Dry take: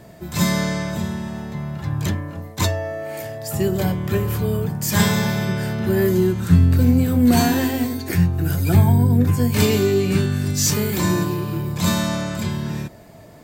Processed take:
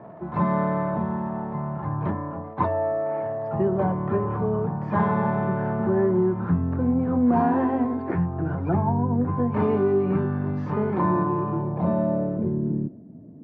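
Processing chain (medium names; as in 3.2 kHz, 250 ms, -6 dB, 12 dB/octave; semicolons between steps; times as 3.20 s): crackle 280 per s -34 dBFS; compression 2:1, threshold -20 dBFS, peak gain reduction 7 dB; low-pass sweep 1 kHz -> 250 Hz, 11.45–13.03 s; band-pass 140–2700 Hz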